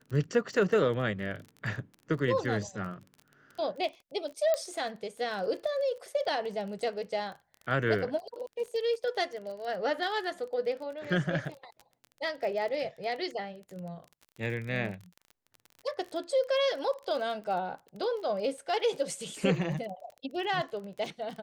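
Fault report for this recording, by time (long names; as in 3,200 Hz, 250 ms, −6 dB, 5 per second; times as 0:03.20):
surface crackle 24 per second −38 dBFS
0:04.54: click −16 dBFS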